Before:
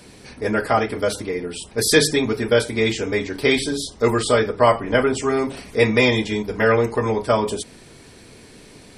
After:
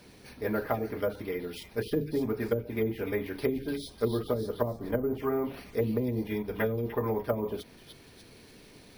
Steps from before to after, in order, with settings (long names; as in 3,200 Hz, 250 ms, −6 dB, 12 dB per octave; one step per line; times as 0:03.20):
treble cut that deepens with the level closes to 310 Hz, closed at −12.5 dBFS
echo through a band-pass that steps 297 ms, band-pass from 3,500 Hz, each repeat 0.7 octaves, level −2.5 dB
bad sample-rate conversion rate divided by 3×, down filtered, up hold
level −8.5 dB